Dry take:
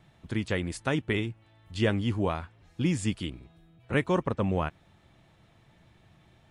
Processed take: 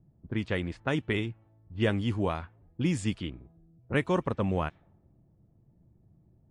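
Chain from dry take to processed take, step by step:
low-pass that shuts in the quiet parts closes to 310 Hz, open at −23.5 dBFS
level −1 dB

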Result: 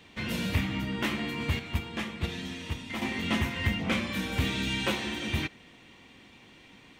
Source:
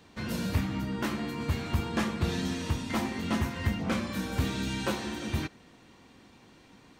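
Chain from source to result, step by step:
0:01.59–0:03.02: noise gate −25 dBFS, range −7 dB
flat-topped bell 2,600 Hz +8 dB 1.1 octaves

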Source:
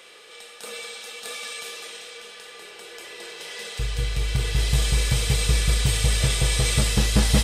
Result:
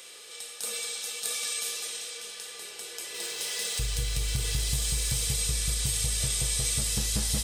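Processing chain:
0:03.14–0:05.26: mu-law and A-law mismatch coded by mu
bass and treble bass +2 dB, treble +14 dB
downward compressor 6 to 1, threshold −20 dBFS, peak gain reduction 10 dB
level −5 dB

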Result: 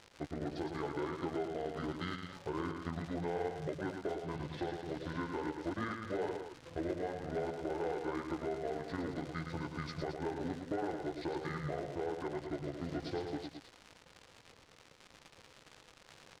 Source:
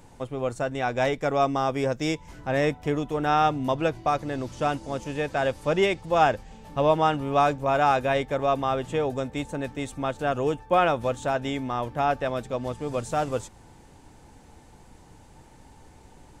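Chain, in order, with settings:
pitch shift by two crossfaded delay taps −9.5 semitones
high-pass filter 120 Hz 12 dB per octave
parametric band 220 Hz −11 dB 0.63 octaves
downward compressor 5 to 1, threshold −37 dBFS, peak gain reduction 17 dB
dead-zone distortion −56 dBFS
surface crackle 130 per second −38 dBFS
gain into a clipping stage and back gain 30.5 dB
high-frequency loss of the air 76 metres
on a send: loudspeakers that aren't time-aligned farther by 38 metres −6 dB, 75 metres −10 dB
on the sum: level +1.5 dB

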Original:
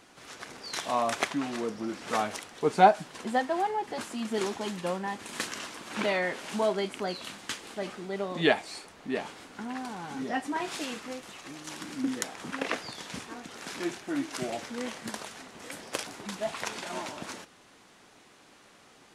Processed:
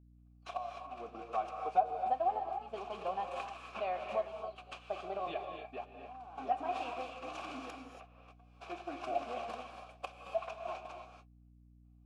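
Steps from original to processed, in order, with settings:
camcorder AGC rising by 6.1 dB per second
noise gate −32 dBFS, range −40 dB
low-shelf EQ 93 Hz −8.5 dB
downward compressor 2.5 to 1, threshold −25 dBFS, peak gain reduction 9 dB
gate pattern "xxxxx...xxxxxxxx" 83 BPM −12 dB
phase-vocoder stretch with locked phases 0.63×
formant filter a
reverb whose tail is shaped and stops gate 310 ms rising, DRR 4 dB
mains hum 60 Hz, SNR 21 dB
level +1 dB

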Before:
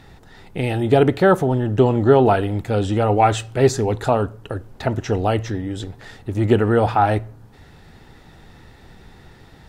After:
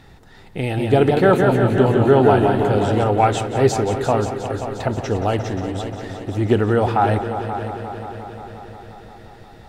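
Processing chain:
echo machine with several playback heads 177 ms, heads all three, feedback 64%, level −14 dB
0:00.61–0:03.04: feedback echo with a swinging delay time 162 ms, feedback 48%, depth 115 cents, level −4.5 dB
level −1 dB

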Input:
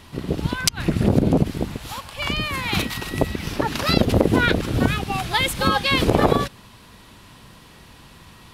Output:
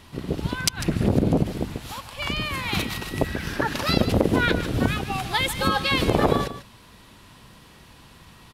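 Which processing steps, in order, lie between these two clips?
0:03.24–0:03.73: parametric band 1,600 Hz +13 dB 0.31 octaves
on a send: single-tap delay 149 ms −12.5 dB
on the sum: level −3 dB

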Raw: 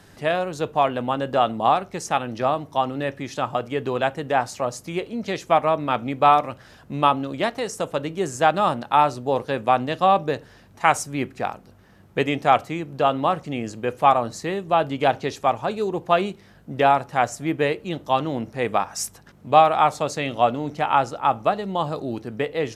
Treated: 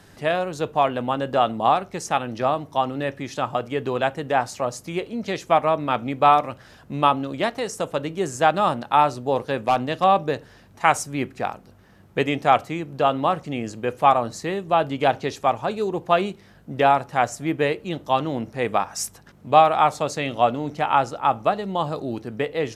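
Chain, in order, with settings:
0:09.41–0:10.04: hard clipping −12 dBFS, distortion −28 dB

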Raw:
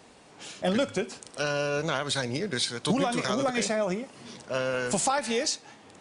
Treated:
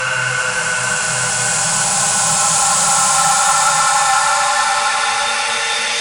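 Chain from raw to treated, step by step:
extreme stretch with random phases 11×, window 0.50 s, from 0:04.77
sine wavefolder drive 3 dB, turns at −13.5 dBFS
drawn EQ curve 160 Hz 0 dB, 260 Hz −28 dB, 1,000 Hz +6 dB
level +3.5 dB

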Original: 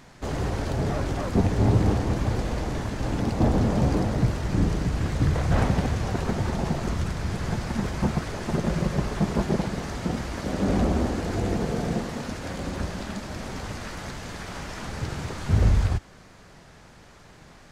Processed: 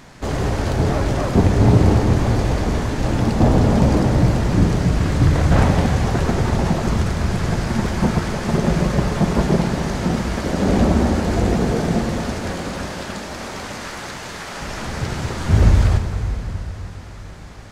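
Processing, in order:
0:12.51–0:14.61: low-shelf EQ 240 Hz −12 dB
dense smooth reverb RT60 4.4 s, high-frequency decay 0.8×, DRR 5 dB
level +6.5 dB

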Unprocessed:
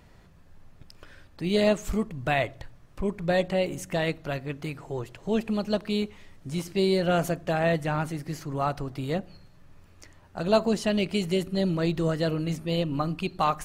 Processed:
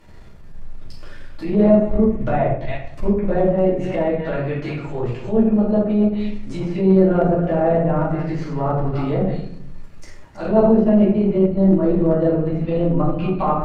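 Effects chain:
delay that plays each chunk backwards 196 ms, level −12 dB
treble cut that deepens with the level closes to 860 Hz, closed at −24 dBFS
convolution reverb RT60 0.65 s, pre-delay 3 ms, DRR −9 dB
transient designer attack −7 dB, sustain −3 dB

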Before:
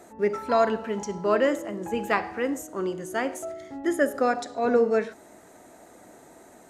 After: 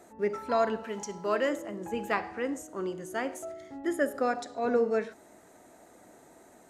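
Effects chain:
0:00.83–0:01.49: spectral tilt +1.5 dB per octave
0:02.17–0:02.66: low-pass filter 11,000 Hz 24 dB per octave
0:03.84–0:04.25: notch filter 6,300 Hz, Q 10
level −5 dB

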